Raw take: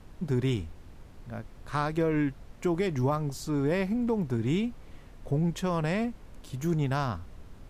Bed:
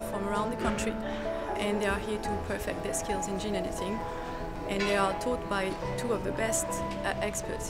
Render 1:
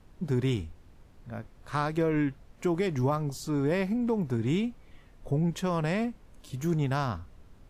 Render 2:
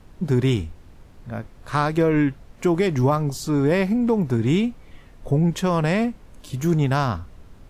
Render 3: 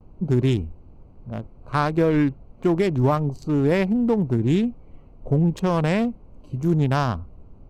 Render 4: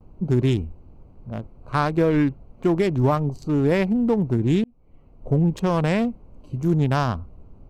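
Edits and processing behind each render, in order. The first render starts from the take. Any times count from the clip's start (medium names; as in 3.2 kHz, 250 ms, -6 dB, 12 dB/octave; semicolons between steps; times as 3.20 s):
noise print and reduce 6 dB
trim +8 dB
local Wiener filter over 25 samples; gate with hold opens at -41 dBFS
4.64–5.31 s: fade in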